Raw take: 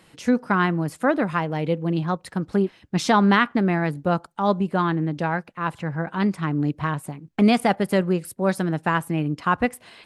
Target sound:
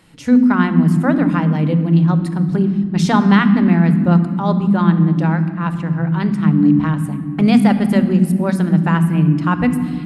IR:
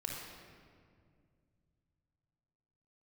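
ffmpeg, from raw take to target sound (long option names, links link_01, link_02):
-filter_complex "[0:a]asplit=2[link_01][link_02];[link_02]lowshelf=frequency=340:width_type=q:width=3:gain=10[link_03];[1:a]atrim=start_sample=2205[link_04];[link_03][link_04]afir=irnorm=-1:irlink=0,volume=-6dB[link_05];[link_01][link_05]amix=inputs=2:normalize=0,volume=-1dB"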